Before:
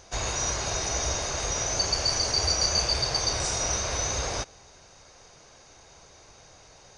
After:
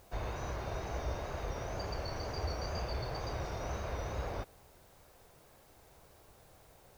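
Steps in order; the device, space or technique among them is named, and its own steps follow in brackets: cassette deck with a dirty head (tape spacing loss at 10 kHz 39 dB; wow and flutter; white noise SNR 27 dB); trim -4.5 dB

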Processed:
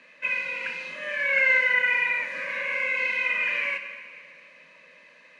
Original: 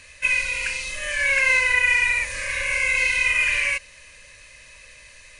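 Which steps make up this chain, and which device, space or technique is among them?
steep high-pass 160 Hz 72 dB/octave; 1.33–1.90 s: comb 1.4 ms, depth 65%; phone in a pocket (low-pass 3.2 kHz 12 dB/octave; peaking EQ 240 Hz +3 dB 0.35 oct; treble shelf 2.4 kHz -10 dB); plate-style reverb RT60 2.1 s, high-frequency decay 1×, DRR 8 dB

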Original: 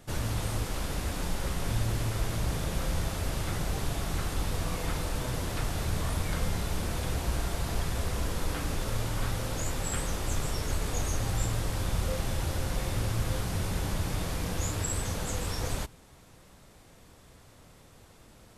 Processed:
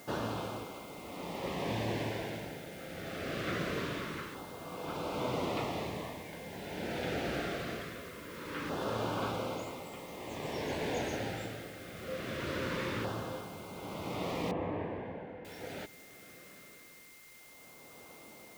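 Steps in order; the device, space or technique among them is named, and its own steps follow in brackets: shortwave radio (band-pass 250–2700 Hz; tremolo 0.55 Hz, depth 75%; LFO notch saw down 0.23 Hz 700–2200 Hz; whistle 2.1 kHz -63 dBFS; white noise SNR 19 dB); 14.51–15.45 s: Bessel low-pass 1.5 kHz, order 4; trim +5.5 dB

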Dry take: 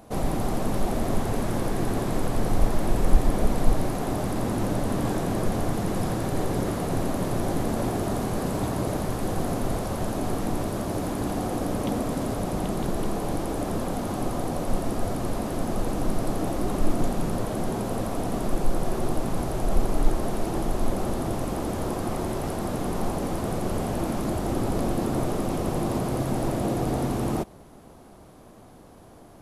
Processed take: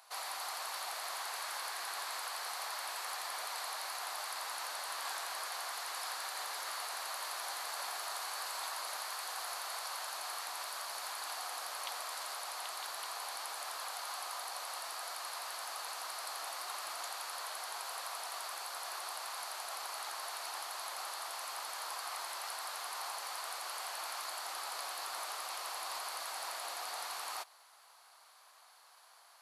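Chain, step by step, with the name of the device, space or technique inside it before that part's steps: headphones lying on a table (high-pass 1 kHz 24 dB/octave; peaking EQ 4.4 kHz +9.5 dB 0.28 oct); trim -2.5 dB

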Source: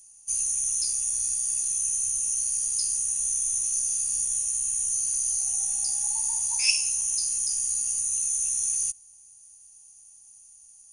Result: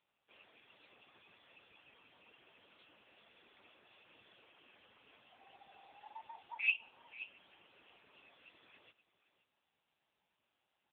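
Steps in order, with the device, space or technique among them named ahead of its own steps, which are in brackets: reverb removal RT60 0.57 s; 3.02–3.59 s: high-pass 98 Hz 6 dB/octave; satellite phone (band-pass 300–3300 Hz; delay 527 ms -14.5 dB; trim +1 dB; AMR-NB 6.7 kbps 8 kHz)

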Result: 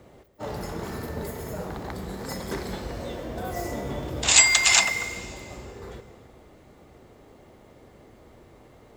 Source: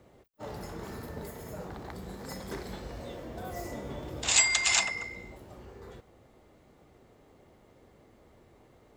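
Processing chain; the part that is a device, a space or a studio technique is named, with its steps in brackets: saturated reverb return (on a send at -10 dB: reverberation RT60 1.9 s, pre-delay 88 ms + saturation -31 dBFS, distortion -6 dB); on the sum: trim +7 dB

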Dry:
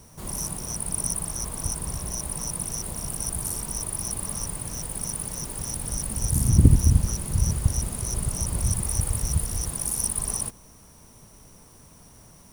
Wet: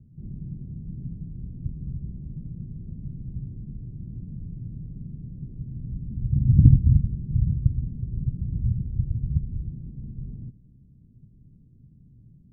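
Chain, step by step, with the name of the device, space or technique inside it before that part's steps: the neighbour's flat through the wall (low-pass 270 Hz 24 dB/octave; peaking EQ 130 Hz +8 dB 0.65 oct); trim -2 dB

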